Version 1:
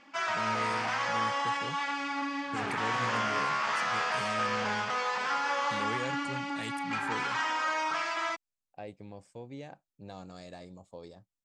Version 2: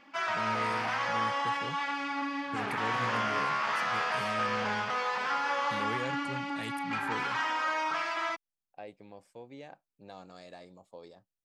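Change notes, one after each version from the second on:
second voice: add HPF 370 Hz 6 dB/oct; master: remove synth low-pass 7800 Hz, resonance Q 2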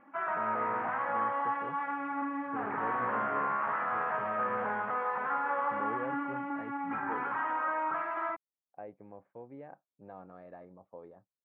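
first voice: add band-pass 660 Hz, Q 0.58; master: add LPF 1600 Hz 24 dB/oct

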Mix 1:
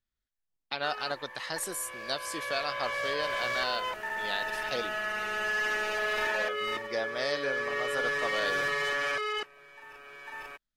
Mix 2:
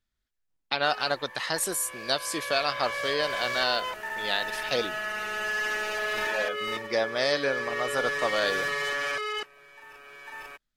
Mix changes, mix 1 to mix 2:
speech +6.5 dB; background: add high shelf 4600 Hz +5 dB

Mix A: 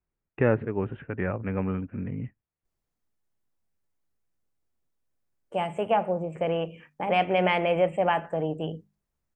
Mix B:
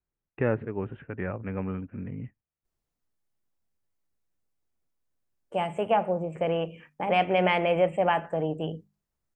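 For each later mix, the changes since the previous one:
first voice -3.5 dB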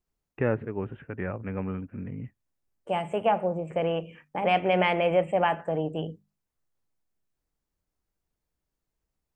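second voice: entry -2.65 s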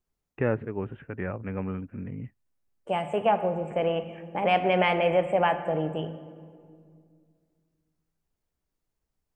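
reverb: on, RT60 2.1 s

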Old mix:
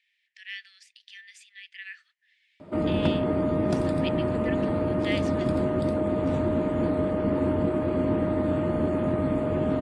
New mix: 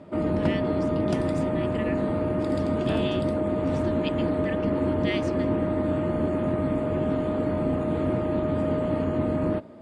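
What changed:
second voice: unmuted; background: entry -2.60 s

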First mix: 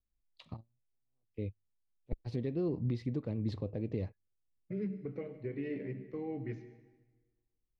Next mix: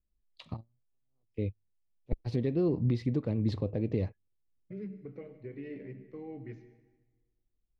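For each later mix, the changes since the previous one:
first voice +5.5 dB; second voice -4.0 dB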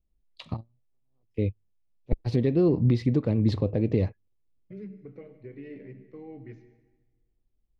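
first voice +6.5 dB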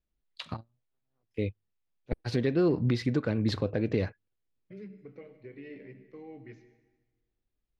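first voice: add bell 1500 Hz +13.5 dB 0.37 oct; master: add tilt +2 dB/oct

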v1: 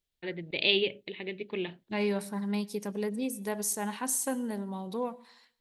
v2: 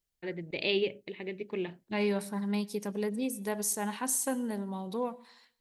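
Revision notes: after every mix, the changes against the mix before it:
first voice: remove synth low-pass 3600 Hz, resonance Q 2.7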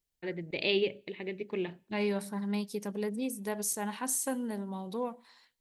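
first voice: send on; second voice: send -11.0 dB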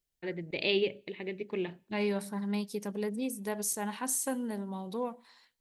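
none

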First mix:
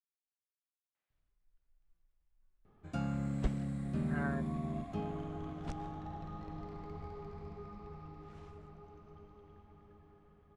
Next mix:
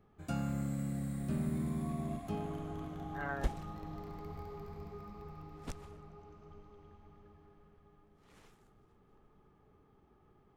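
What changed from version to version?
speech: entry -0.95 s; first sound: entry -2.65 s; master: remove air absorption 80 m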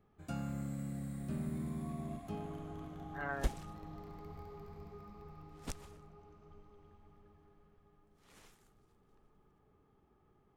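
first sound -4.0 dB; second sound: add high shelf 4200 Hz +7.5 dB

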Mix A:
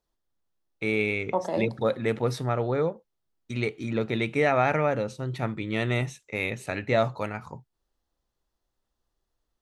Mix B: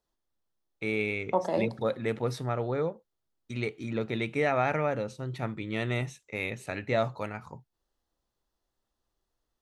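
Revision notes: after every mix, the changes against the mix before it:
first voice -4.0 dB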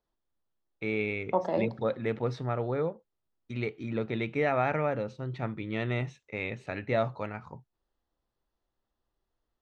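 master: add air absorption 160 m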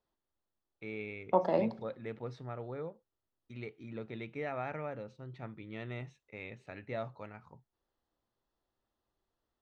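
first voice -11.0 dB

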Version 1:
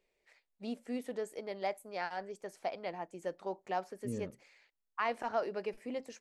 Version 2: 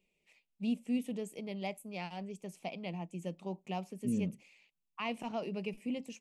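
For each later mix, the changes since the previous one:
master: add EQ curve 120 Hz 0 dB, 170 Hz +14 dB, 370 Hz -2 dB, 520 Hz -5 dB, 1100 Hz -6 dB, 1600 Hz -17 dB, 2600 Hz +8 dB, 4400 Hz -4 dB, 6400 Hz +1 dB, 9200 Hz +3 dB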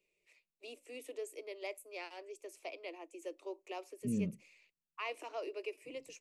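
first voice: add steep high-pass 290 Hz 96 dB/oct; master: add thirty-one-band EQ 250 Hz -4 dB, 800 Hz -11 dB, 3150 Hz -6 dB

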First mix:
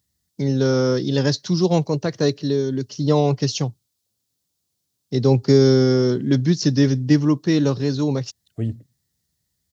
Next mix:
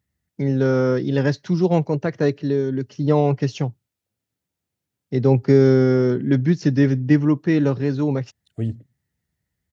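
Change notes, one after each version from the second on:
first voice: add resonant high shelf 3100 Hz -10.5 dB, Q 1.5; master: add notch 1100 Hz, Q 12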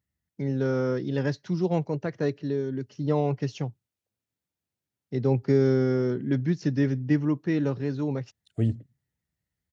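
first voice -7.5 dB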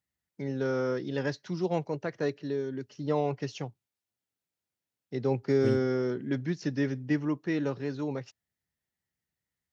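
second voice: entry -2.95 s; master: add low shelf 250 Hz -10.5 dB

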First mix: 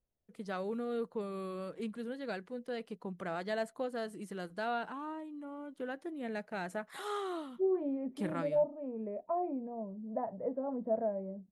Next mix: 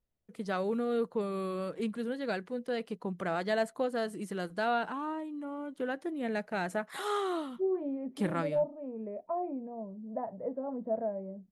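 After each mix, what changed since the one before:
first voice +5.5 dB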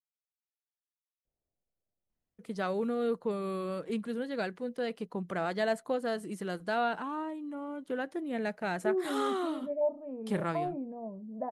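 first voice: entry +2.10 s; second voice: entry +1.25 s

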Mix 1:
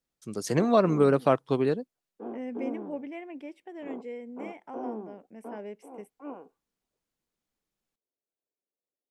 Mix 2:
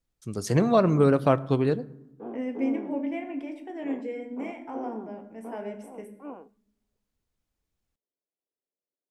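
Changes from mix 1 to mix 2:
first voice: remove HPF 180 Hz 12 dB/oct; reverb: on, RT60 0.95 s

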